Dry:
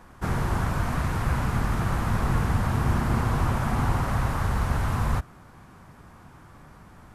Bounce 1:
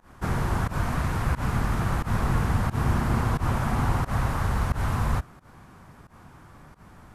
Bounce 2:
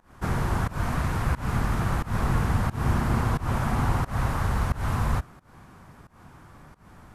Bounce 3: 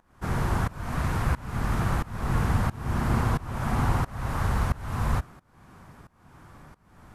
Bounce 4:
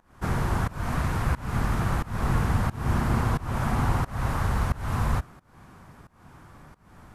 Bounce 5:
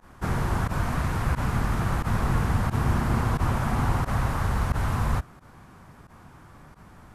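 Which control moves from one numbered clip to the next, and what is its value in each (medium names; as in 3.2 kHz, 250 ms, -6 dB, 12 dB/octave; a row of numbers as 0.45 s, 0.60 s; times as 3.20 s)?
volume shaper, release: 112 ms, 200 ms, 509 ms, 322 ms, 61 ms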